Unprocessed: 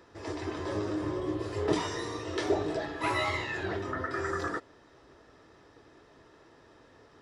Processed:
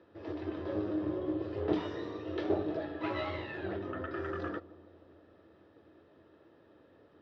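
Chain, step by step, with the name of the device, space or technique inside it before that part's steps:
analogue delay pedal into a guitar amplifier (bucket-brigade delay 149 ms, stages 1,024, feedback 75%, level −19.5 dB; tube saturation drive 19 dB, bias 0.7; loudspeaker in its box 81–3,700 Hz, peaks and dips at 83 Hz +7 dB, 200 Hz +6 dB, 320 Hz +7 dB, 560 Hz +7 dB, 980 Hz −4 dB, 2,100 Hz −5 dB)
level −3 dB

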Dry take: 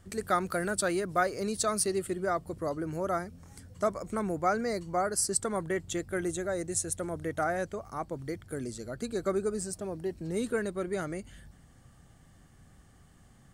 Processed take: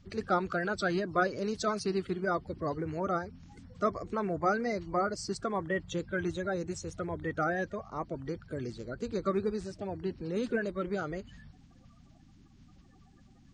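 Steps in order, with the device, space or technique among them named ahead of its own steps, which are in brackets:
clip after many re-uploads (low-pass filter 5,200 Hz 24 dB per octave; spectral magnitudes quantised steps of 30 dB)

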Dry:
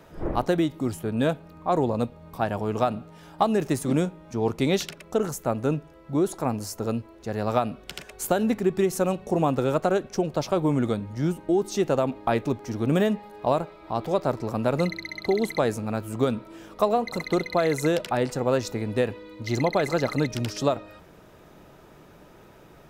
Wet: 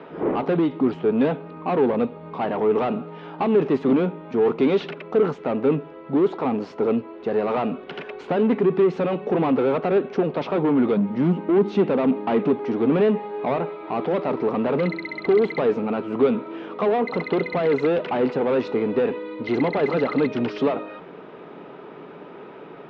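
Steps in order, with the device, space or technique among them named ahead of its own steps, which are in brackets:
0:10.96–0:12.52: parametric band 200 Hz +11.5 dB 0.4 octaves
overdrive pedal into a guitar cabinet (mid-hump overdrive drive 27 dB, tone 1,700 Hz, clips at −7.5 dBFS; loudspeaker in its box 80–3,500 Hz, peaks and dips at 100 Hz −9 dB, 170 Hz +6 dB, 260 Hz +7 dB, 420 Hz +8 dB, 620 Hz −3 dB, 1,700 Hz −4 dB)
level −7 dB

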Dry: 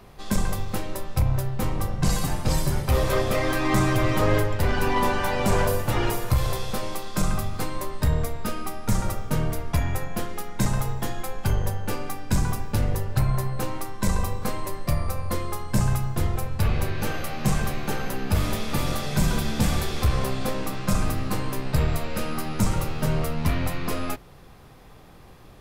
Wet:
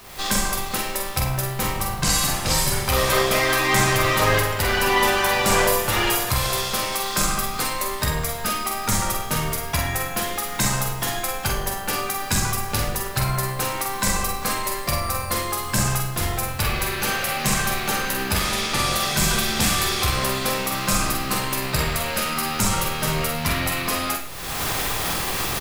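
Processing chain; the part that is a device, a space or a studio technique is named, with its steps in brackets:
0:18.40–0:18.92: low-pass filter 10,000 Hz 12 dB per octave
cheap recorder with automatic gain (white noise bed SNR 38 dB; camcorder AGC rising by 46 dB per second)
tilt shelving filter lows −7 dB, about 850 Hz
double-tracking delay 46 ms −6 dB
four-comb reverb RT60 0.44 s, DRR 7 dB
level +3 dB

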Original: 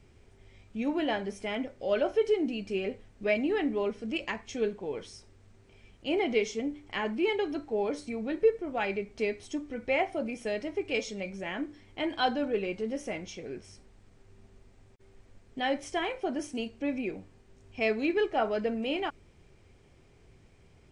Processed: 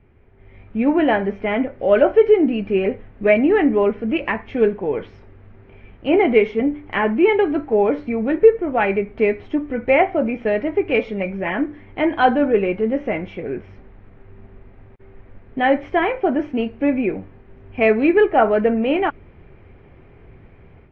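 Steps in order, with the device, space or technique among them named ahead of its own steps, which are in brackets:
action camera in a waterproof case (low-pass filter 2,300 Hz 24 dB per octave; automatic gain control gain up to 9.5 dB; level +4 dB; AAC 48 kbit/s 44,100 Hz)

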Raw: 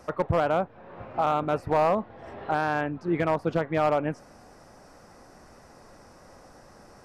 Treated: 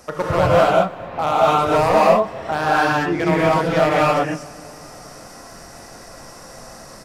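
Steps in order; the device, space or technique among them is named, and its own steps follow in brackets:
high-shelf EQ 3,000 Hz +11 dB
compressed reverb return (on a send at −6 dB: convolution reverb RT60 1.9 s, pre-delay 79 ms + downward compressor, threshold −39 dBFS, peak gain reduction 18 dB)
on the sum: single-tap delay 256 ms −24 dB
reverb whose tail is shaped and stops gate 270 ms rising, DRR −6.5 dB
level +2 dB

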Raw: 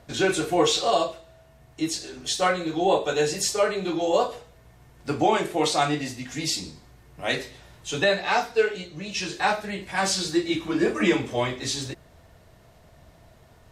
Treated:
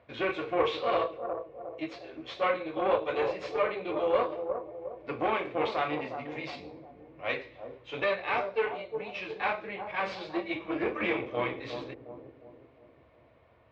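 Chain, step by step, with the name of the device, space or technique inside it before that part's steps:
analogue delay pedal into a guitar amplifier (bucket-brigade delay 358 ms, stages 2,048, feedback 48%, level −7.5 dB; tube saturation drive 18 dB, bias 0.75; loudspeaker in its box 75–3,400 Hz, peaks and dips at 170 Hz −9 dB, 520 Hz +9 dB, 1,100 Hz +8 dB, 2,300 Hz +9 dB)
level −6 dB

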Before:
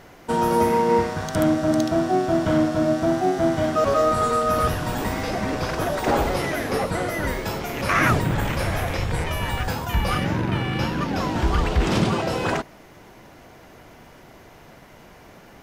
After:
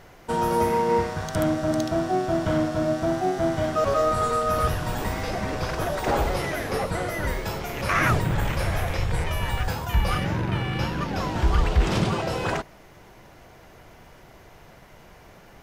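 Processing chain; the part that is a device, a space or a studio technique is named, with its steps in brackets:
low shelf boost with a cut just above (low-shelf EQ 70 Hz +6.5 dB; parametric band 260 Hz −5 dB 0.6 octaves)
level −2.5 dB

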